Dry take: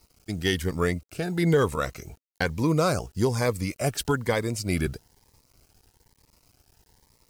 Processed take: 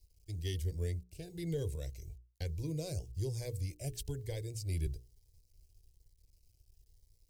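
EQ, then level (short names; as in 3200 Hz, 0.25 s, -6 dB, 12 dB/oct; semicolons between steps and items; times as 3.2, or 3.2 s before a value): passive tone stack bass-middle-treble 10-0-1; notches 60/120/180/240/300/360/420/480 Hz; fixed phaser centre 530 Hz, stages 4; +8.5 dB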